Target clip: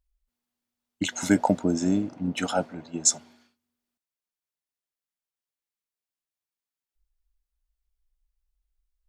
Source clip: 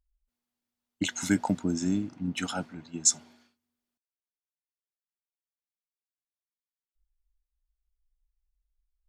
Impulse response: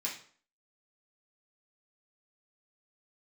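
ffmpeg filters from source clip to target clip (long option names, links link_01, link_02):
-filter_complex "[0:a]asettb=1/sr,asplit=3[link_01][link_02][link_03];[link_01]atrim=end=1.124[link_04];[link_02]atrim=start=1.12:end=3.18,asetpts=PTS-STARTPTS,afade=type=in:duration=0.004:curve=qsin,afade=type=out:start_time=2.056:duration=0.004:curve=qsin,equalizer=frequency=580:width=1.2:gain=12[link_05];[link_03]atrim=start=3.176[link_06];[link_04][link_05]acrossfade=duration=0.004:curve1=hsin:curve2=qsin[link_07];[link_07][link_06]acrossfade=duration=0.004:curve1=qsin:curve2=hsin,volume=1.5dB"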